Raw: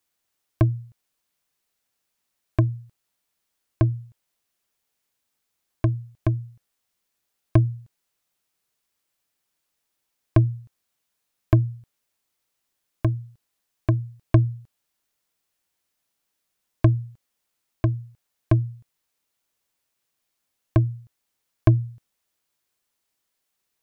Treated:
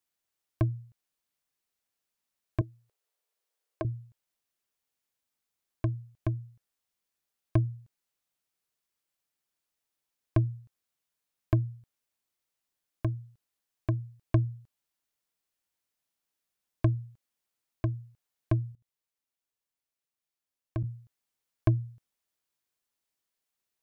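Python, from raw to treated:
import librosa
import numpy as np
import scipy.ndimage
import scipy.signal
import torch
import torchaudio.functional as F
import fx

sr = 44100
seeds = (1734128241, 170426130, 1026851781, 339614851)

y = fx.low_shelf_res(x, sr, hz=300.0, db=-14.0, q=3.0, at=(2.61, 3.85))
y = fx.level_steps(y, sr, step_db=21, at=(18.72, 20.84))
y = F.gain(torch.from_numpy(y), -8.0).numpy()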